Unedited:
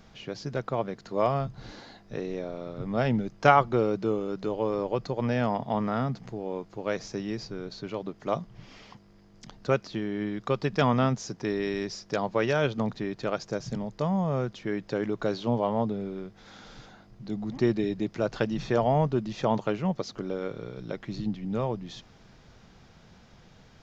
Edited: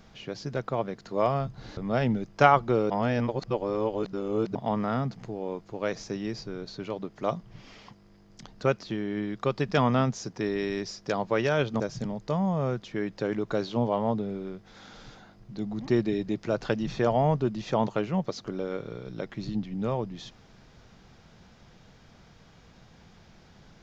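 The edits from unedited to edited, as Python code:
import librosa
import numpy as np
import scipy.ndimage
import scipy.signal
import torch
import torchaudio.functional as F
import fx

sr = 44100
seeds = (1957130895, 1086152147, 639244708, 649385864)

y = fx.edit(x, sr, fx.cut(start_s=1.77, length_s=1.04),
    fx.reverse_span(start_s=3.94, length_s=1.65),
    fx.cut(start_s=12.84, length_s=0.67), tone=tone)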